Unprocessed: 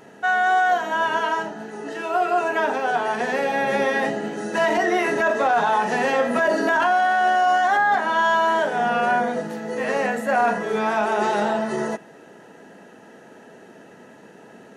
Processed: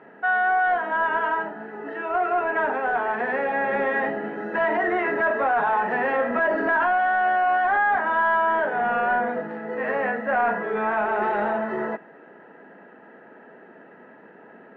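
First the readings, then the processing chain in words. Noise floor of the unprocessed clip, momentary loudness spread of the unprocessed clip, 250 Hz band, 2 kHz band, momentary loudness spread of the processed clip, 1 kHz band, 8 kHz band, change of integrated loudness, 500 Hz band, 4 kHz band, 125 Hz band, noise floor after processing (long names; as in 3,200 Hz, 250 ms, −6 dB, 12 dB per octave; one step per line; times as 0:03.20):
−47 dBFS, 9 LU, −4.0 dB, −1.0 dB, 8 LU, −2.0 dB, below −30 dB, −2.0 dB, −2.5 dB, below −10 dB, −6.0 dB, −48 dBFS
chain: high-pass filter 190 Hz
in parallel at −3 dB: gain into a clipping stage and back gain 20.5 dB
on the sum: transistor ladder low-pass 2,300 Hz, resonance 30%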